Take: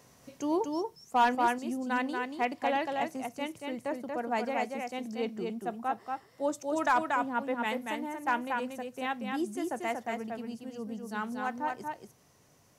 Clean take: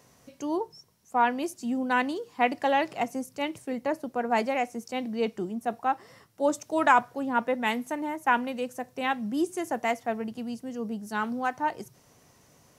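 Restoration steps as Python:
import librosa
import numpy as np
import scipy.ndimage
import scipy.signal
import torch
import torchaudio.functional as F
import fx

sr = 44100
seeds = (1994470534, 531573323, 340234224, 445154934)

y = fx.fix_declip(x, sr, threshold_db=-18.0)
y = fx.fix_echo_inverse(y, sr, delay_ms=234, level_db=-4.0)
y = fx.fix_level(y, sr, at_s=1.35, step_db=6.0)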